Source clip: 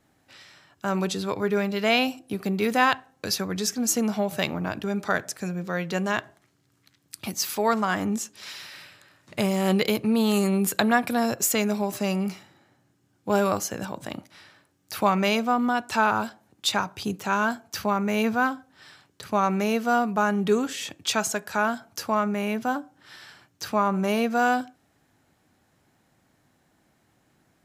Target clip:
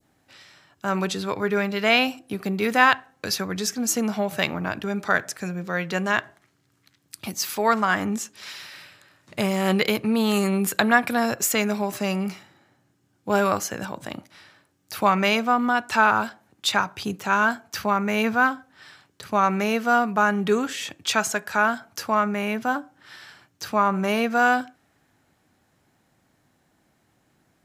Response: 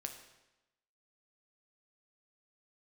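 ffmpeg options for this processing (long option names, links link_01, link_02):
-af "adynamicequalizer=threshold=0.0178:dfrequency=1700:dqfactor=0.8:tfrequency=1700:tqfactor=0.8:attack=5:release=100:ratio=0.375:range=3:mode=boostabove:tftype=bell"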